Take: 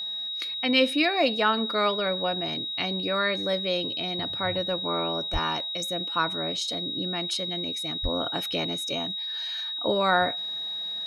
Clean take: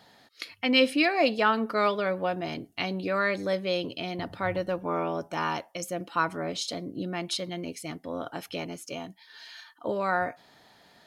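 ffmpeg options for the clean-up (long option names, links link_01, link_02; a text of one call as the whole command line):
ffmpeg -i in.wav -filter_complex "[0:a]bandreject=frequency=3800:width=30,asplit=3[link_01][link_02][link_03];[link_01]afade=type=out:start_time=5.32:duration=0.02[link_04];[link_02]highpass=frequency=140:width=0.5412,highpass=frequency=140:width=1.3066,afade=type=in:start_time=5.32:duration=0.02,afade=type=out:start_time=5.44:duration=0.02[link_05];[link_03]afade=type=in:start_time=5.44:duration=0.02[link_06];[link_04][link_05][link_06]amix=inputs=3:normalize=0,asplit=3[link_07][link_08][link_09];[link_07]afade=type=out:start_time=8.02:duration=0.02[link_10];[link_08]highpass=frequency=140:width=0.5412,highpass=frequency=140:width=1.3066,afade=type=in:start_time=8.02:duration=0.02,afade=type=out:start_time=8.14:duration=0.02[link_11];[link_09]afade=type=in:start_time=8.14:duration=0.02[link_12];[link_10][link_11][link_12]amix=inputs=3:normalize=0,asetnsamples=nb_out_samples=441:pad=0,asendcmd='8.05 volume volume -4.5dB',volume=0dB" out.wav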